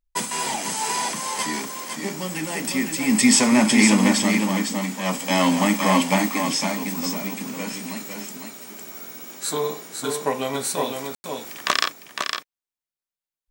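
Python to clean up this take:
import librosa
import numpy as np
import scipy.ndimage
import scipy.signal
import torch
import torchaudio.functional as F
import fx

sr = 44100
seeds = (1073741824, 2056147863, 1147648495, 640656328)

y = fx.fix_ambience(x, sr, seeds[0], print_start_s=0.0, print_end_s=0.5, start_s=11.15, end_s=11.24)
y = fx.fix_echo_inverse(y, sr, delay_ms=507, level_db=-5.5)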